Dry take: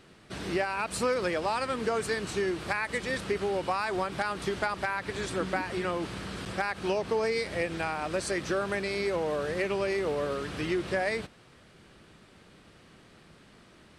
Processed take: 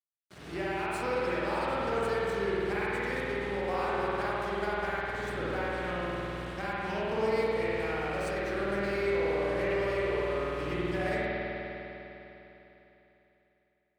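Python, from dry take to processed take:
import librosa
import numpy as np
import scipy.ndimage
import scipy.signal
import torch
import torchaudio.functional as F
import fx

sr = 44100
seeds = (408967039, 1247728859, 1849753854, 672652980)

y = np.sign(x) * np.maximum(np.abs(x) - 10.0 ** (-41.5 / 20.0), 0.0)
y = scipy.signal.sosfilt(scipy.signal.butter(2, 55.0, 'highpass', fs=sr, output='sos'), y)
y = fx.rev_spring(y, sr, rt60_s=3.5, pass_ms=(50,), chirp_ms=65, drr_db=-9.0)
y = F.gain(torch.from_numpy(y), -9.0).numpy()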